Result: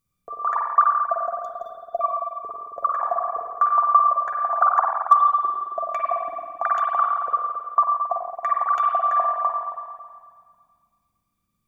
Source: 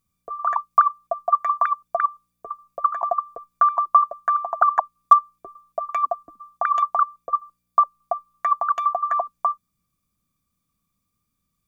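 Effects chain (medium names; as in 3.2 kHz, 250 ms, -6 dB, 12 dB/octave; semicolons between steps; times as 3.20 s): 1.25–2.01 s: brick-wall FIR band-stop 760–3200 Hz; spring tank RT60 1.9 s, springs 45/54 ms, chirp 80 ms, DRR -1 dB; trim -2.5 dB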